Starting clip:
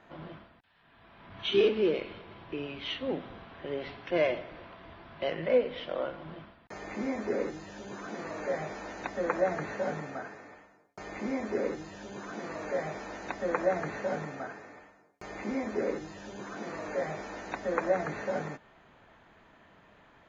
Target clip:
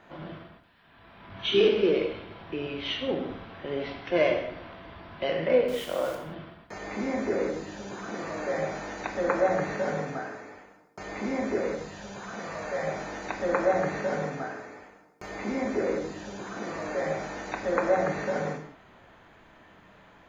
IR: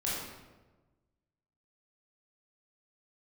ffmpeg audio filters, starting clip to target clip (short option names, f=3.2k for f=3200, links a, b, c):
-filter_complex "[0:a]asettb=1/sr,asplit=3[a][b][c];[a]atrim=end=5.684[d];[b]atrim=start=5.68:end=6.15,asetpts=PTS-STARTPTS,afade=t=in:d=0.004:c=qsin,afade=t=out:st=0.466:d=0.004:c=qsin,aeval=exprs='val(0)*gte(abs(val(0)),0.00708)':c=same[e];[c]atrim=start=6.146[f];[d][e]acrossfade=d=0.004:c1=hsin:c2=qsin[g];[g][f]acrossfade=d=0.004:c1=qsin:c2=hsin,asettb=1/sr,asplit=3[h][i][j];[h]atrim=end=11.604[k];[i]atrim=start=11.6:end=12.87,asetpts=PTS-STARTPTS,afade=t=in:d=0.004:c=qsin,afade=t=out:st=1.266:d=0.004:c=qsin,equalizer=f=320:t=o:w=0.62:g=-10[l];[j]atrim=start=12.866[m];[k][l]acrossfade=d=0.004:c1=hsin:c2=qsin[n];[n][m]acrossfade=d=0.004:c1=qsin:c2=hsin,asplit=2[o][p];[1:a]atrim=start_sample=2205,afade=t=out:st=0.25:d=0.01,atrim=end_sample=11466,highshelf=f=6.2k:g=8[q];[p][q]afir=irnorm=-1:irlink=0,volume=-6.5dB[r];[o][r]amix=inputs=2:normalize=0"